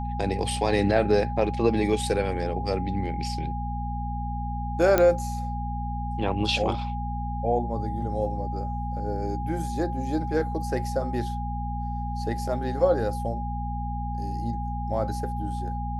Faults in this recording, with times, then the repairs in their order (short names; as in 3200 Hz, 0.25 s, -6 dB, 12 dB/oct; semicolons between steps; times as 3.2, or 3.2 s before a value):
hum 60 Hz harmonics 4 -31 dBFS
tone 820 Hz -33 dBFS
4.98 pop -7 dBFS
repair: de-click; notch 820 Hz, Q 30; de-hum 60 Hz, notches 4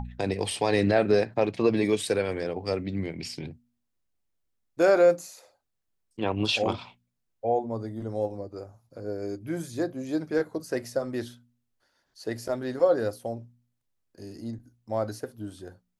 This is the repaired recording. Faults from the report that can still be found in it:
none